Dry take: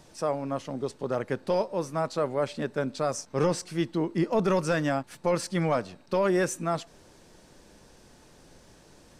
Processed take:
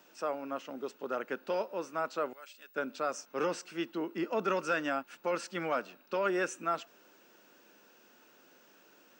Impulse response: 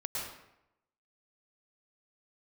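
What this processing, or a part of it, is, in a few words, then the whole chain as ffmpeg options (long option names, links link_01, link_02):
old television with a line whistle: -filter_complex "[0:a]highpass=frequency=230:width=0.5412,highpass=frequency=230:width=1.3066,equalizer=frequency=1400:width_type=q:width=4:gain=10,equalizer=frequency=2700:width_type=q:width=4:gain=9,equalizer=frequency=4400:width_type=q:width=4:gain=-3,lowpass=frequency=7700:width=0.5412,lowpass=frequency=7700:width=1.3066,aeval=exprs='val(0)+0.00126*sin(2*PI*15625*n/s)':channel_layout=same,asettb=1/sr,asplit=3[link_01][link_02][link_03];[link_01]atrim=end=2.334[link_04];[link_02]atrim=start=2.33:end=2.75,asetpts=PTS-STARTPTS,afade=type=in:duration=0.004:curve=qsin,afade=type=out:start_time=0.416:duration=0.004:curve=qsin,aderivative[link_05];[link_03]atrim=start=2.746[link_06];[link_04][link_05]acrossfade=duration=0.004:curve1=hsin:curve2=qsin[link_07];[link_07][link_06]acrossfade=duration=0.004:curve1=qsin:curve2=hsin,volume=-7dB"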